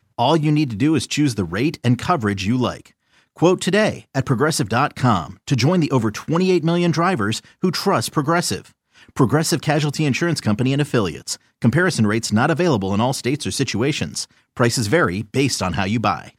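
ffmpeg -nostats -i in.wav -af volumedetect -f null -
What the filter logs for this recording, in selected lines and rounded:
mean_volume: -19.2 dB
max_volume: -3.3 dB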